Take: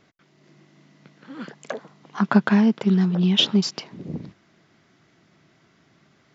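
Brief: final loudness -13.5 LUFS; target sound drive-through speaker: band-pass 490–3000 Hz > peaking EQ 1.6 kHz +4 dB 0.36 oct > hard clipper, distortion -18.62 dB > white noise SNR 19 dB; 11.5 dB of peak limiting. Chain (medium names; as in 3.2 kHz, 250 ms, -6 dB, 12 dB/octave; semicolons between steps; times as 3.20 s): peak limiter -15.5 dBFS; band-pass 490–3000 Hz; peaking EQ 1.6 kHz +4 dB 0.36 oct; hard clipper -22.5 dBFS; white noise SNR 19 dB; trim +22 dB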